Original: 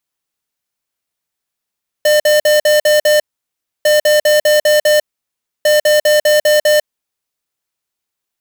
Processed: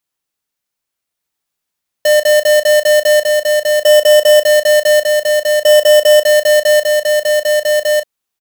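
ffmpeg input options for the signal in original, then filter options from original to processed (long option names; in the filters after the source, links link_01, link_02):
-f lavfi -i "aevalsrc='0.316*(2*lt(mod(602*t,1),0.5)-1)*clip(min(mod(mod(t,1.8),0.2),0.15-mod(mod(t,1.8),0.2))/0.005,0,1)*lt(mod(t,1.8),1.2)':duration=5.4:sample_rate=44100"
-filter_complex "[0:a]asplit=2[link_01][link_02];[link_02]adelay=35,volume=-11dB[link_03];[link_01][link_03]amix=inputs=2:normalize=0,aecho=1:1:1199:0.708"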